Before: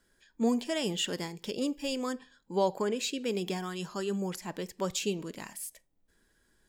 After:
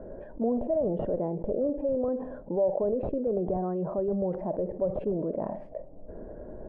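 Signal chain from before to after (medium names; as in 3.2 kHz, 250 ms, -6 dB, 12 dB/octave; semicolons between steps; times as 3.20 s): in parallel at -5.5 dB: Schmitt trigger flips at -26 dBFS; on the sum: four-pole ladder low-pass 650 Hz, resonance 75%; level flattener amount 70%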